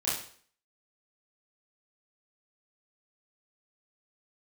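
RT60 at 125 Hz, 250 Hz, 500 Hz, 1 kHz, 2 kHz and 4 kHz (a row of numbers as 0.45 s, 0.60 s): 0.45 s, 0.50 s, 0.50 s, 0.50 s, 0.50 s, 0.50 s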